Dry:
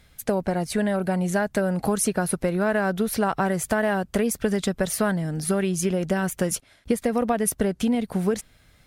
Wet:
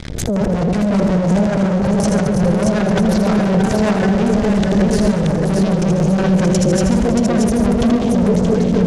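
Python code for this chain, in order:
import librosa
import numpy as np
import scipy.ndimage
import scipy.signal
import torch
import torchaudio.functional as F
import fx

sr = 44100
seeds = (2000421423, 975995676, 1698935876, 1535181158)

p1 = fx.reverse_delay_fb(x, sr, ms=122, feedback_pct=70, wet_db=-7.0)
p2 = fx.bass_treble(p1, sr, bass_db=13, treble_db=-6)
p3 = fx.leveller(p2, sr, passes=5)
p4 = fx.level_steps(p3, sr, step_db=18)
p5 = fx.transient(p4, sr, attack_db=-1, sustain_db=7)
p6 = fx.filter_lfo_lowpass(p5, sr, shape='square', hz=5.5, low_hz=540.0, high_hz=6400.0, q=1.9)
p7 = p6 + fx.echo_multitap(p6, sr, ms=(81, 140, 323, 628), db=(-7.0, -11.5, -19.0, -4.0), dry=0)
y = fx.pre_swell(p7, sr, db_per_s=50.0)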